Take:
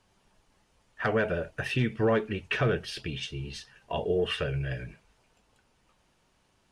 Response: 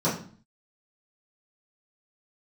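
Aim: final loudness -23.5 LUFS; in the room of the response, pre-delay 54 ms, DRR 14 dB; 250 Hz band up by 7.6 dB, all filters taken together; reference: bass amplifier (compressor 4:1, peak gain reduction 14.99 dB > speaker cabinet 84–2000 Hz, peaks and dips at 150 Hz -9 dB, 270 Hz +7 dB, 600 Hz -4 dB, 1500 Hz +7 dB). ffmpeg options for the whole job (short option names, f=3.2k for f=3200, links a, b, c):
-filter_complex "[0:a]equalizer=f=250:t=o:g=7.5,asplit=2[a][b];[1:a]atrim=start_sample=2205,adelay=54[c];[b][c]afir=irnorm=-1:irlink=0,volume=-27dB[d];[a][d]amix=inputs=2:normalize=0,acompressor=threshold=-34dB:ratio=4,highpass=f=84:w=0.5412,highpass=f=84:w=1.3066,equalizer=f=150:t=q:w=4:g=-9,equalizer=f=270:t=q:w=4:g=7,equalizer=f=600:t=q:w=4:g=-4,equalizer=f=1.5k:t=q:w=4:g=7,lowpass=f=2k:w=0.5412,lowpass=f=2k:w=1.3066,volume=14dB"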